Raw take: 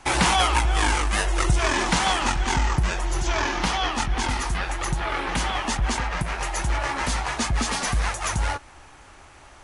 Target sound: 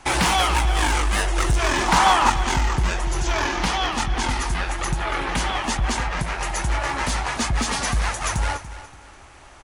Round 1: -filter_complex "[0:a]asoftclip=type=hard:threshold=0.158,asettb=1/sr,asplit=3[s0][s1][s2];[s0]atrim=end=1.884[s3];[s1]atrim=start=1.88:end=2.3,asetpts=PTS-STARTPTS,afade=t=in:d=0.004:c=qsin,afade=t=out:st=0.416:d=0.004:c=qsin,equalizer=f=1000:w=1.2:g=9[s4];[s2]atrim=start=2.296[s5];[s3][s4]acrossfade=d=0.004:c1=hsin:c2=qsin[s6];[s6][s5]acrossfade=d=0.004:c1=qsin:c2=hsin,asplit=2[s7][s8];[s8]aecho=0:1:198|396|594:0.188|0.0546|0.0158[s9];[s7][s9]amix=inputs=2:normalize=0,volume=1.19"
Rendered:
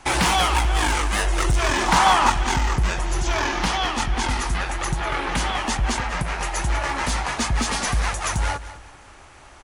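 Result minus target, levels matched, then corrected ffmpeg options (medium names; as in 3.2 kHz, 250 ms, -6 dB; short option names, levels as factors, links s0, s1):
echo 90 ms early
-filter_complex "[0:a]asoftclip=type=hard:threshold=0.158,asettb=1/sr,asplit=3[s0][s1][s2];[s0]atrim=end=1.884[s3];[s1]atrim=start=1.88:end=2.3,asetpts=PTS-STARTPTS,afade=t=in:d=0.004:c=qsin,afade=t=out:st=0.416:d=0.004:c=qsin,equalizer=f=1000:w=1.2:g=9[s4];[s2]atrim=start=2.296[s5];[s3][s4]acrossfade=d=0.004:c1=hsin:c2=qsin[s6];[s6][s5]acrossfade=d=0.004:c1=qsin:c2=hsin,asplit=2[s7][s8];[s8]aecho=0:1:288|576|864:0.188|0.0546|0.0158[s9];[s7][s9]amix=inputs=2:normalize=0,volume=1.19"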